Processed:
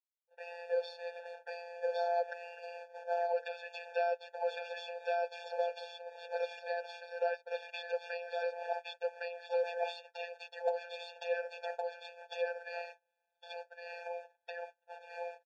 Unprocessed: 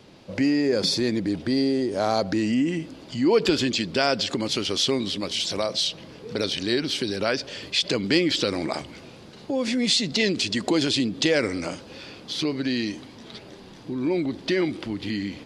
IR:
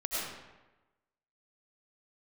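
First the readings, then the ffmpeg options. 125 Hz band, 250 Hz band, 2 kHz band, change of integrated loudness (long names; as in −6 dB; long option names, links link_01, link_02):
below −40 dB, below −40 dB, −12.0 dB, −14.5 dB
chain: -filter_complex "[0:a]dynaudnorm=framelen=820:gausssize=5:maxgain=5dB,highpass=frequency=42:width=0.5412,highpass=frequency=42:width=1.3066,acrusher=bits=5:mix=0:aa=0.000001,afftfilt=real='hypot(re,im)*cos(PI*b)':imag='0':win_size=1024:overlap=0.75,aeval=exprs='0.891*(cos(1*acos(clip(val(0)/0.891,-1,1)))-cos(1*PI/2))+0.0708*(cos(3*acos(clip(val(0)/0.891,-1,1)))-cos(3*PI/2))+0.0316*(cos(5*acos(clip(val(0)/0.891,-1,1)))-cos(5*PI/2))+0.0355*(cos(6*acos(clip(val(0)/0.891,-1,1)))-cos(6*PI/2))':channel_layout=same,asplit=2[link_01][link_02];[link_02]aecho=0:1:1110:0.708[link_03];[link_01][link_03]amix=inputs=2:normalize=0,acompressor=threshold=-26dB:ratio=10,agate=range=-39dB:threshold=-32dB:ratio=16:detection=peak,lowpass=1700,afftfilt=real='re*eq(mod(floor(b*sr/1024/470),2),1)':imag='im*eq(mod(floor(b*sr/1024/470),2),1)':win_size=1024:overlap=0.75,volume=1dB"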